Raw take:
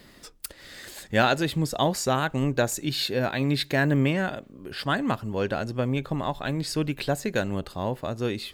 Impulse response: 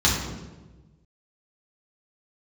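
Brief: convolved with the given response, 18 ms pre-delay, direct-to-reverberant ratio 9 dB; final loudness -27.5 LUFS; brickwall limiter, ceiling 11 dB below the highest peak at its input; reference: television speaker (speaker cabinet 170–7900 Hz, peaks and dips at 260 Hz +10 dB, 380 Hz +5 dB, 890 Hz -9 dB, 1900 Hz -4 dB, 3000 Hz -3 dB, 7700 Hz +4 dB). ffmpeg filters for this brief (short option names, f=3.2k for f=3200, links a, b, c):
-filter_complex "[0:a]alimiter=limit=-19dB:level=0:latency=1,asplit=2[a][b];[1:a]atrim=start_sample=2205,adelay=18[c];[b][c]afir=irnorm=-1:irlink=0,volume=-25.5dB[d];[a][d]amix=inputs=2:normalize=0,highpass=f=170:w=0.5412,highpass=f=170:w=1.3066,equalizer=f=260:t=q:w=4:g=10,equalizer=f=380:t=q:w=4:g=5,equalizer=f=890:t=q:w=4:g=-9,equalizer=f=1.9k:t=q:w=4:g=-4,equalizer=f=3k:t=q:w=4:g=-3,equalizer=f=7.7k:t=q:w=4:g=4,lowpass=f=7.9k:w=0.5412,lowpass=f=7.9k:w=1.3066,volume=-1.5dB"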